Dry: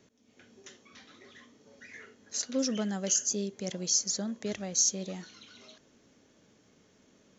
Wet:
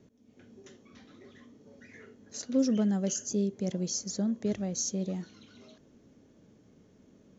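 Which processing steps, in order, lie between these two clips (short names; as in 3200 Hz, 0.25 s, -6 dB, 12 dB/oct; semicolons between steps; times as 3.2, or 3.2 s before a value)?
tilt shelf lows +7.5 dB, about 640 Hz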